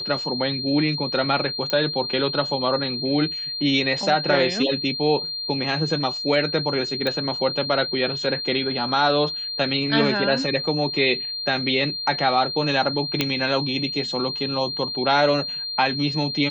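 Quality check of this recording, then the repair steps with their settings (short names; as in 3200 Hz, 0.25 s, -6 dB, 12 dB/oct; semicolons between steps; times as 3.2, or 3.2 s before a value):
tone 4200 Hz -27 dBFS
1.7 pop -10 dBFS
7.07 pop -13 dBFS
13.21 pop -5 dBFS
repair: de-click; notch 4200 Hz, Q 30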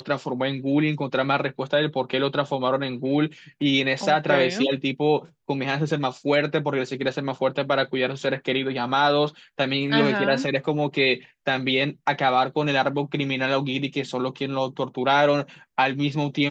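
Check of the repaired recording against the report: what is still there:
none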